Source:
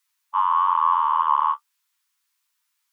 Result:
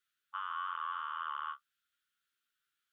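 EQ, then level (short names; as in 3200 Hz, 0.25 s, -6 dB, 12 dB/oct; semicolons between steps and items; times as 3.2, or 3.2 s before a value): EQ curve 380 Hz 0 dB, 660 Hz -8 dB, 1100 Hz -6 dB, 1700 Hz -14 dB, 3200 Hz -17 dB, 5000 Hz -21 dB; dynamic EQ 870 Hz, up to -5 dB, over -31 dBFS, Q 0.91; EQ curve 650 Hz 0 dB, 960 Hz -26 dB, 1400 Hz +9 dB, 2200 Hz +1 dB, 3300 Hz +9 dB, 5100 Hz +2 dB; +3.5 dB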